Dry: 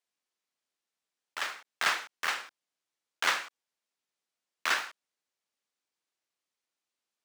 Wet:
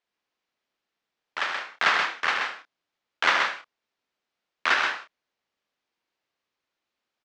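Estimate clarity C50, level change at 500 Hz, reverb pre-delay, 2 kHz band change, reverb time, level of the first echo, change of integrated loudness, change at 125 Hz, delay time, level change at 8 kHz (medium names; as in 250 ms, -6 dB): no reverb, +9.0 dB, no reverb, +8.0 dB, no reverb, -10.0 dB, +6.5 dB, no reading, 71 ms, -2.5 dB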